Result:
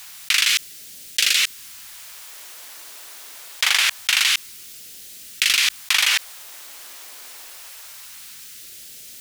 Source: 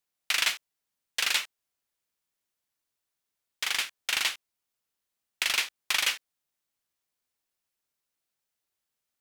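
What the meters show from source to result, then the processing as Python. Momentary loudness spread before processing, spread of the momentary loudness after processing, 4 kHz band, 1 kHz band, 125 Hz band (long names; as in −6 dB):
11 LU, 21 LU, +10.5 dB, +6.0 dB, can't be measured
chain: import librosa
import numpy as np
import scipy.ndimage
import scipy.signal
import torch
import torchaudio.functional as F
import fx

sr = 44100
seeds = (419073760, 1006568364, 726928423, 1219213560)

y = fx.low_shelf(x, sr, hz=250.0, db=-7.0)
y = fx.phaser_stages(y, sr, stages=2, low_hz=110.0, high_hz=1000.0, hz=0.25, feedback_pct=20)
y = fx.env_flatten(y, sr, amount_pct=100)
y = y * librosa.db_to_amplitude(5.0)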